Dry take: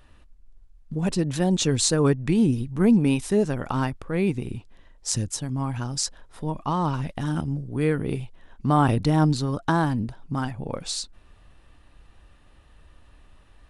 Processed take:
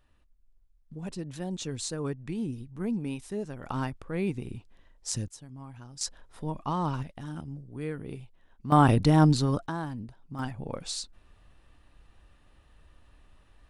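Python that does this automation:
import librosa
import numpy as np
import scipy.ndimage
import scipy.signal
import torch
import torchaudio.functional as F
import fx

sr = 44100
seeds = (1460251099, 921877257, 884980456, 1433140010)

y = fx.gain(x, sr, db=fx.steps((0.0, -13.0), (3.63, -6.5), (5.28, -17.0), (6.01, -5.0), (7.03, -12.0), (8.72, 0.0), (9.66, -12.0), (10.39, -5.0)))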